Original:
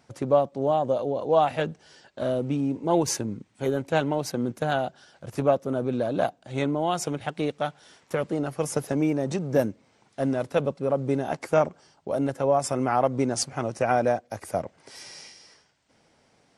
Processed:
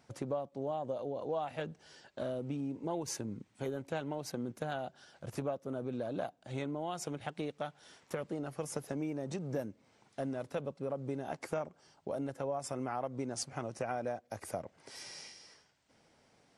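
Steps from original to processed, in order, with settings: compression 3:1, threshold -32 dBFS, peak gain reduction 13 dB; trim -4.5 dB

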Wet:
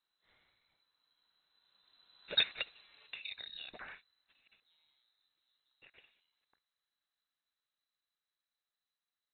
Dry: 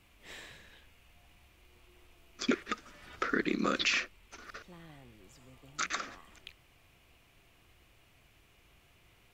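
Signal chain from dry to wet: Doppler pass-by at 2.44 s, 16 m/s, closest 2.4 m; frequency inversion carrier 4 kHz

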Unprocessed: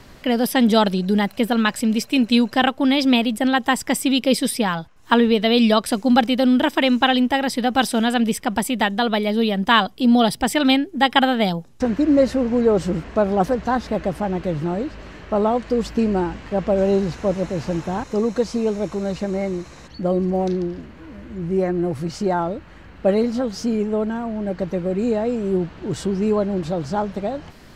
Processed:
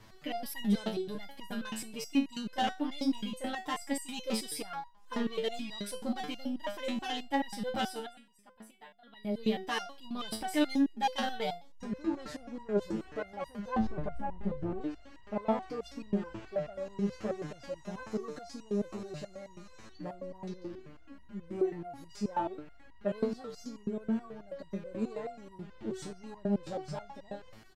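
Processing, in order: 7.74–9.51 s: dip -21.5 dB, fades 0.48 s; 13.76–14.81 s: tilt EQ -4 dB/octave; saturation -14 dBFS, distortion -13 dB; speakerphone echo 170 ms, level -23 dB; resonator arpeggio 9.3 Hz 110–950 Hz

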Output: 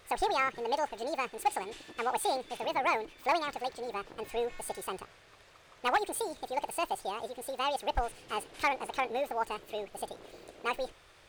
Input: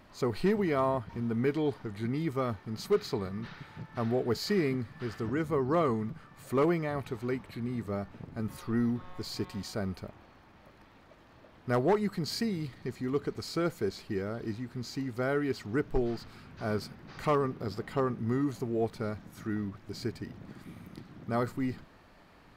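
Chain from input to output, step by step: peaking EQ 110 Hz -14 dB 1 oct; speed mistake 7.5 ips tape played at 15 ips

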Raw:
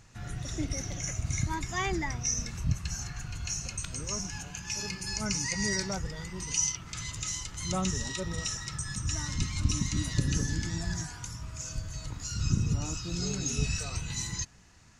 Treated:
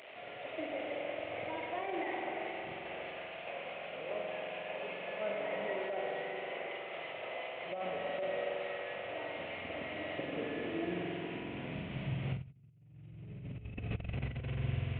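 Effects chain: one-bit delta coder 16 kbps, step -41 dBFS; high-pass sweep 610 Hz -> 77 Hz, 10.14–13.12 s; spring tank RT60 3.6 s, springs 45 ms, chirp 70 ms, DRR -1 dB; compressor with a negative ratio -32 dBFS, ratio -0.5; high-order bell 1.2 kHz -10.5 dB 1.3 oct; trim -4 dB

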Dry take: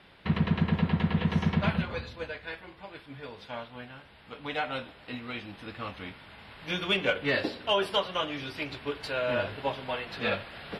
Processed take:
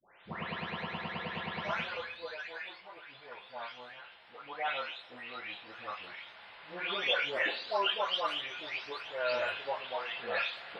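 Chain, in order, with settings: delay that grows with frequency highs late, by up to 447 ms; three-band isolator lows -20 dB, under 470 Hz, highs -23 dB, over 6.1 kHz

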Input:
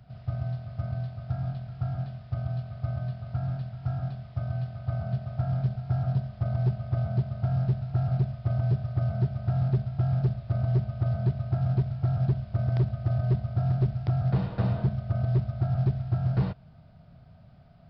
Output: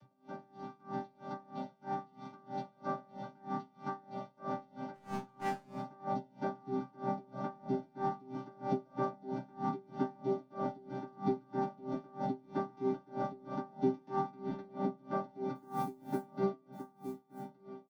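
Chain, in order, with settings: vocoder on a held chord bare fifth, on G3; level rider gain up to 7.5 dB; 15.55–16.22 s: companded quantiser 8-bit; on a send at -13 dB: reverberation RT60 0.85 s, pre-delay 3 ms; on the sum: compression, threshold -19 dBFS, peak gain reduction 10.5 dB; bass shelf 180 Hz -3.5 dB; delay 1170 ms -9.5 dB; 4.94–5.70 s: overload inside the chain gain 24.5 dB; tone controls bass +7 dB, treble +12 dB; feedback comb 130 Hz, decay 0.49 s, harmonics all, mix 100%; logarithmic tremolo 3.1 Hz, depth 27 dB; trim +8 dB

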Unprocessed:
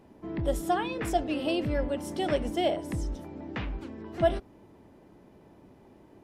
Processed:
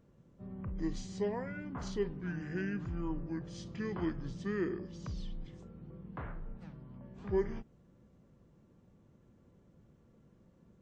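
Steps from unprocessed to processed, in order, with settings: speed mistake 78 rpm record played at 45 rpm; trim -8.5 dB

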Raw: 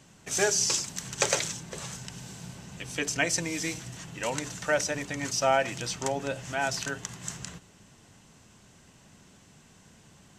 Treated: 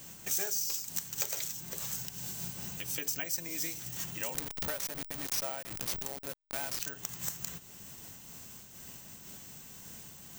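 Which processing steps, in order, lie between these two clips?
4.34–6.80 s: send-on-delta sampling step -28 dBFS; compression 4:1, threshold -44 dBFS, peak gain reduction 20 dB; treble shelf 4.8 kHz +12 dB; wavefolder -23.5 dBFS; careless resampling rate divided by 2×, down none, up zero stuff; random flutter of the level, depth 60%; trim +3.5 dB

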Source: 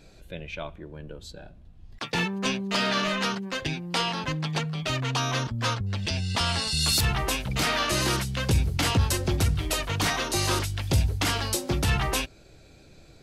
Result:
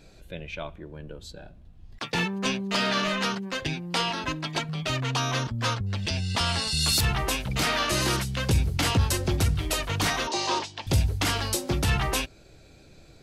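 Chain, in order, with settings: 4.10–4.69 s: comb 3.1 ms, depth 55%; 10.27–10.87 s: cabinet simulation 300–6200 Hz, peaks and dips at 920 Hz +9 dB, 1.4 kHz -8 dB, 2.1 kHz -4 dB

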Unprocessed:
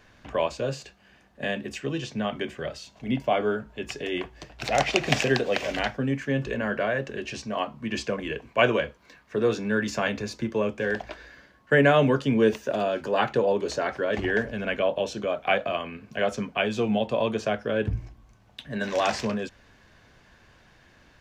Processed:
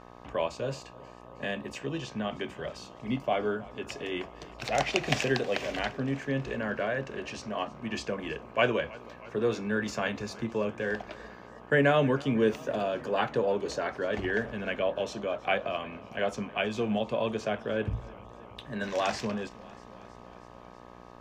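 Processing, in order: mains buzz 60 Hz, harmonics 21, -46 dBFS 0 dB/octave; modulated delay 318 ms, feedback 73%, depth 62 cents, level -21.5 dB; trim -4.5 dB

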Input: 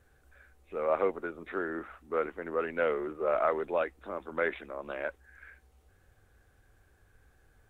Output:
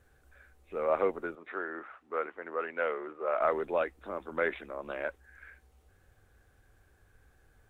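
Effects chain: 1.35–3.41 s: band-pass filter 1.3 kHz, Q 0.53

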